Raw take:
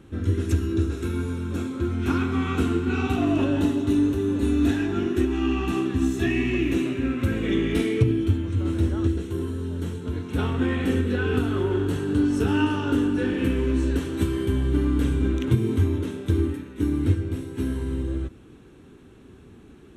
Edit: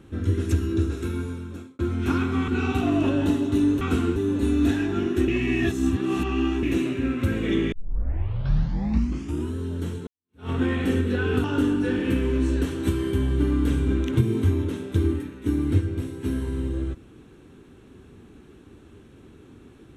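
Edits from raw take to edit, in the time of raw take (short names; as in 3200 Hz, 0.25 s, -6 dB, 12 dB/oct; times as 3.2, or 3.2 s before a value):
0.79–1.79 fade out equal-power
2.48–2.83 move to 4.16
5.28–6.63 reverse
7.72 tape start 1.84 s
10.07–10.5 fade in exponential
11.44–12.78 cut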